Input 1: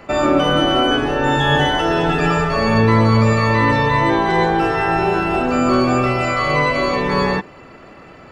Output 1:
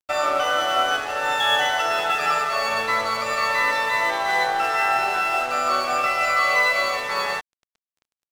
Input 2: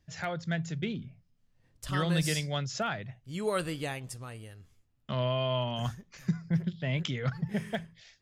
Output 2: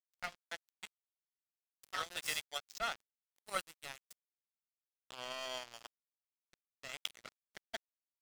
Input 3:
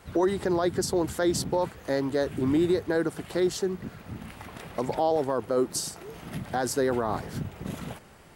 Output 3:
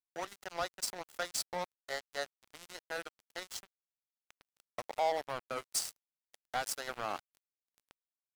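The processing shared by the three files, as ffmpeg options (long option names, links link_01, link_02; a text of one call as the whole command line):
ffmpeg -i in.wav -af "highpass=850,aecho=1:1:1.5:0.46,aeval=exprs='sgn(val(0))*max(abs(val(0))-0.02,0)':channel_layout=same" out.wav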